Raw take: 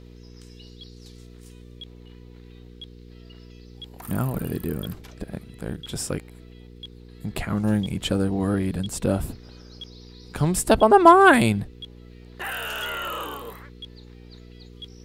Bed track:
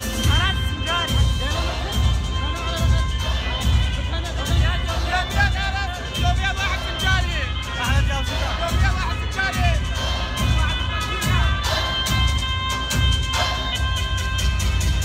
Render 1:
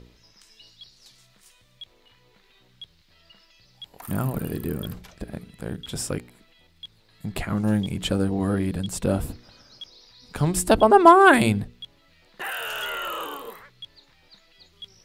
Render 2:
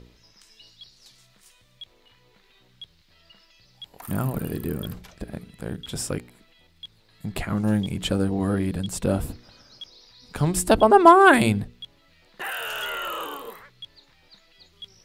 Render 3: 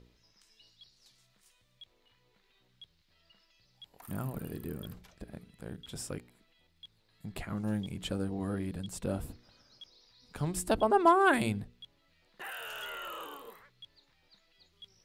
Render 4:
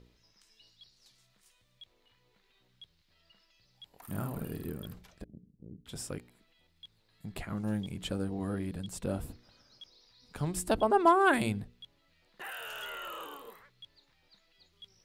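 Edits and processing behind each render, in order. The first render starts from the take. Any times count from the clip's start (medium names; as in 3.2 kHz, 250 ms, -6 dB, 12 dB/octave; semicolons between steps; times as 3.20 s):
de-hum 60 Hz, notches 8
no audible change
trim -11 dB
4.07–4.70 s: doubling 49 ms -4 dB; 5.24–5.86 s: four-pole ladder low-pass 400 Hz, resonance 25%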